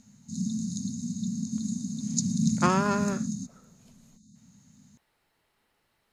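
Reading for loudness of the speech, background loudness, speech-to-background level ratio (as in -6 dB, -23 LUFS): -28.5 LUFS, -30.5 LUFS, 2.0 dB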